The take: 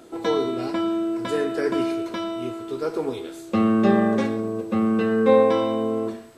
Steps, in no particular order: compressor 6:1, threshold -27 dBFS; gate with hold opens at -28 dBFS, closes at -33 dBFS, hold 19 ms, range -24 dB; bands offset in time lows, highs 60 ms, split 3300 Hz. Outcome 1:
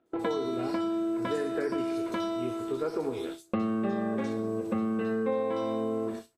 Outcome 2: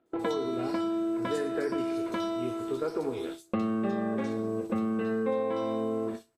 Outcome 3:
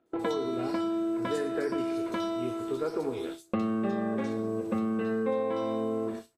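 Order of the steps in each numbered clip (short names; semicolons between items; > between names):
gate with hold > bands offset in time > compressor; compressor > gate with hold > bands offset in time; gate with hold > compressor > bands offset in time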